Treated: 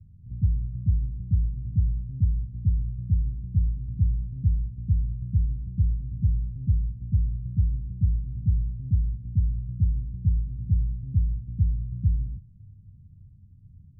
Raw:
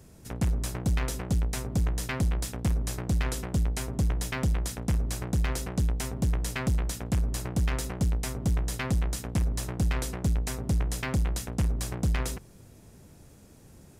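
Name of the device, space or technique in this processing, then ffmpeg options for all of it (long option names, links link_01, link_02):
the neighbour's flat through the wall: -af "lowpass=frequency=160:width=0.5412,lowpass=frequency=160:width=1.3066,equalizer=frequency=96:width_type=o:width=0.42:gain=7.5,volume=2dB"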